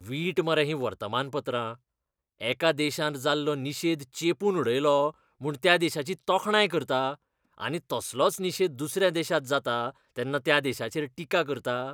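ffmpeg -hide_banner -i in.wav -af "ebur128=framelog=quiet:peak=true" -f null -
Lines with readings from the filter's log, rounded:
Integrated loudness:
  I:         -27.5 LUFS
  Threshold: -37.6 LUFS
Loudness range:
  LRA:         3.1 LU
  Threshold: -47.5 LUFS
  LRA low:   -29.1 LUFS
  LRA high:  -25.9 LUFS
True peak:
  Peak:       -5.5 dBFS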